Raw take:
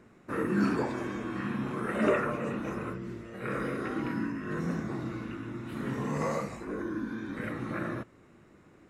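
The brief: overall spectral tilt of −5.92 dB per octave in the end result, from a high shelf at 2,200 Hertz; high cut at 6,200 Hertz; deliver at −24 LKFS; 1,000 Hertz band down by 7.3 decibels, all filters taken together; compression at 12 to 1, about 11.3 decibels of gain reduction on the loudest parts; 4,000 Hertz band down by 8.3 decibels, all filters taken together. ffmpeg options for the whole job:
ffmpeg -i in.wav -af "lowpass=6200,equalizer=frequency=1000:width_type=o:gain=-8,highshelf=frequency=2200:gain=-4.5,equalizer=frequency=4000:width_type=o:gain=-6,acompressor=threshold=-34dB:ratio=12,volume=15.5dB" out.wav

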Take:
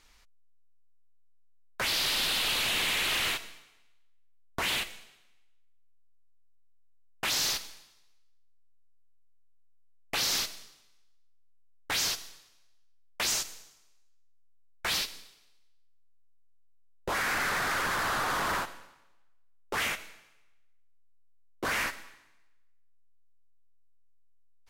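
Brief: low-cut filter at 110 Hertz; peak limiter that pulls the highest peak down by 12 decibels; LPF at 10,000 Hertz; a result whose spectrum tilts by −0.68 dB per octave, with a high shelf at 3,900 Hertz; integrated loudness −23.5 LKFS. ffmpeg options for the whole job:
ffmpeg -i in.wav -af "highpass=110,lowpass=10000,highshelf=frequency=3900:gain=-4,volume=15.5dB,alimiter=limit=-17dB:level=0:latency=1" out.wav

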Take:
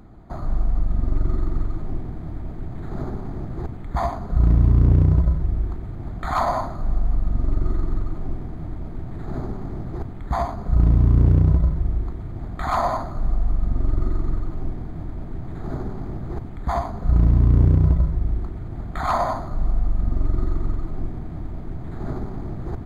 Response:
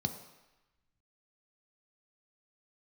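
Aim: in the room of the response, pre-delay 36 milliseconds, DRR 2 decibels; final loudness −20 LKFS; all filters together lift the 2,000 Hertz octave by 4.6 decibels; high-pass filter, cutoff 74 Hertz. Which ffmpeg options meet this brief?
-filter_complex "[0:a]highpass=74,equalizer=frequency=2000:width_type=o:gain=6,asplit=2[link_01][link_02];[1:a]atrim=start_sample=2205,adelay=36[link_03];[link_02][link_03]afir=irnorm=-1:irlink=0,volume=-4.5dB[link_04];[link_01][link_04]amix=inputs=2:normalize=0,volume=-1dB"

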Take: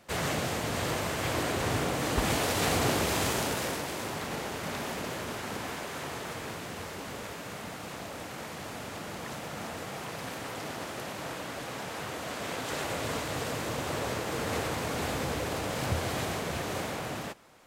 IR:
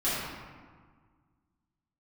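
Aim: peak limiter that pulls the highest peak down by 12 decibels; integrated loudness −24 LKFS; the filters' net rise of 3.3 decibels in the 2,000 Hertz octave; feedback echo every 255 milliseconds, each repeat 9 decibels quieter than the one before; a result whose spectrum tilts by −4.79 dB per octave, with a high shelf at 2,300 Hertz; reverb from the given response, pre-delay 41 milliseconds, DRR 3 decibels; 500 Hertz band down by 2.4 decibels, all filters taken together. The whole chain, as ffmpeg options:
-filter_complex "[0:a]equalizer=frequency=500:width_type=o:gain=-3,equalizer=frequency=2000:width_type=o:gain=8.5,highshelf=frequency=2300:gain=-8.5,alimiter=limit=-24dB:level=0:latency=1,aecho=1:1:255|510|765|1020:0.355|0.124|0.0435|0.0152,asplit=2[link_01][link_02];[1:a]atrim=start_sample=2205,adelay=41[link_03];[link_02][link_03]afir=irnorm=-1:irlink=0,volume=-14dB[link_04];[link_01][link_04]amix=inputs=2:normalize=0,volume=8.5dB"

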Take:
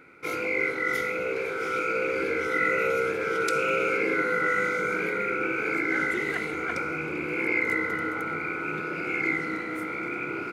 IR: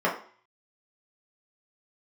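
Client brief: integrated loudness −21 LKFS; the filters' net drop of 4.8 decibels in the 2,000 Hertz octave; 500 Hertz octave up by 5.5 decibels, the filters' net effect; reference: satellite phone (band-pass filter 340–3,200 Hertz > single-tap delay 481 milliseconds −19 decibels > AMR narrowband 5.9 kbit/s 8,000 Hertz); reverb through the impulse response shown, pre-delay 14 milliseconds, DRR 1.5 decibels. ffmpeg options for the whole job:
-filter_complex "[0:a]equalizer=frequency=500:width_type=o:gain=7.5,equalizer=frequency=2000:width_type=o:gain=-6,asplit=2[link_01][link_02];[1:a]atrim=start_sample=2205,adelay=14[link_03];[link_02][link_03]afir=irnorm=-1:irlink=0,volume=-16dB[link_04];[link_01][link_04]amix=inputs=2:normalize=0,highpass=340,lowpass=3200,aecho=1:1:481:0.112,volume=4.5dB" -ar 8000 -c:a libopencore_amrnb -b:a 5900

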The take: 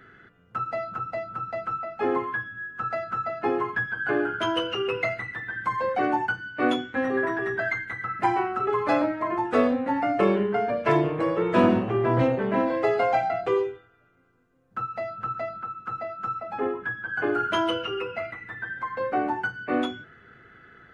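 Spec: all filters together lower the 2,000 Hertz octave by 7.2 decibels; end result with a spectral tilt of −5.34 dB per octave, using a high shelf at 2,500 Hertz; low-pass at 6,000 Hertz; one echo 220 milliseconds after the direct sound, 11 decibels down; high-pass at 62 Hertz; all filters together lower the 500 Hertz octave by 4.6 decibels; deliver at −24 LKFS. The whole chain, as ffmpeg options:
ffmpeg -i in.wav -af "highpass=62,lowpass=6000,equalizer=frequency=500:width_type=o:gain=-5.5,equalizer=frequency=2000:width_type=o:gain=-6.5,highshelf=frequency=2500:gain=-7,aecho=1:1:220:0.282,volume=6dB" out.wav

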